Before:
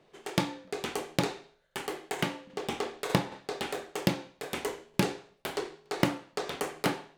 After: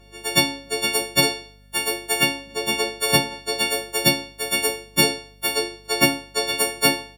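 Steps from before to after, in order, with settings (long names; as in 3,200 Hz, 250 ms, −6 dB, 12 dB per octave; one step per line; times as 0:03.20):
every partial snapped to a pitch grid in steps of 4 semitones
in parallel at −10.5 dB: hard clipping −16.5 dBFS, distortion −17 dB
on the sum: double-tracking delay 14 ms −7 dB
mains hum 50 Hz, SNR 28 dB
level +3 dB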